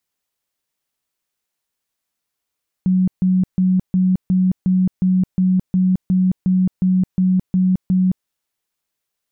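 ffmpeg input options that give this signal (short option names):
-f lavfi -i "aevalsrc='0.251*sin(2*PI*185*mod(t,0.36))*lt(mod(t,0.36),40/185)':d=5.4:s=44100"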